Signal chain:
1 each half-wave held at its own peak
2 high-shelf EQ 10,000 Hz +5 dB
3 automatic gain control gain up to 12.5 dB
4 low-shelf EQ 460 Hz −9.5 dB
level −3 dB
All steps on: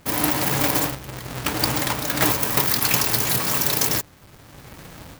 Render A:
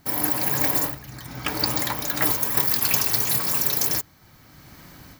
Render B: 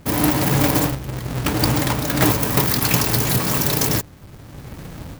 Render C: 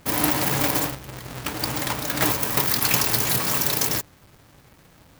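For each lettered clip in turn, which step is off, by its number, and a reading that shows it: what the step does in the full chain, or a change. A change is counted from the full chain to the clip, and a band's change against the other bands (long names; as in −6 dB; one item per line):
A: 1, distortion level −5 dB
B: 4, 125 Hz band +7.5 dB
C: 3, change in momentary loudness spread +4 LU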